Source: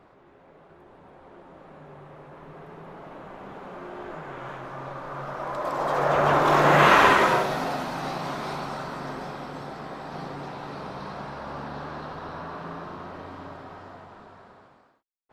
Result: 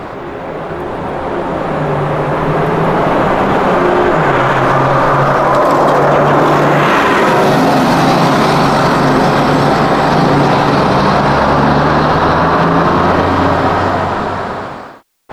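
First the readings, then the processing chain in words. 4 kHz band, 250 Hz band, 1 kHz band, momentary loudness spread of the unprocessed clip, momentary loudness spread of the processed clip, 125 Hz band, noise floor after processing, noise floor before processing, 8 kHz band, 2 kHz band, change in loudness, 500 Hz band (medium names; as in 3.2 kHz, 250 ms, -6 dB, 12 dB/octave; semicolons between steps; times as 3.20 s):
+14.0 dB, +21.5 dB, +15.5 dB, 24 LU, 9 LU, +20.5 dB, -24 dBFS, -56 dBFS, +14.0 dB, +13.0 dB, +14.0 dB, +17.5 dB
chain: dynamic bell 240 Hz, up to +8 dB, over -39 dBFS, Q 0.75; loudness maximiser +32.5 dB; trim -1 dB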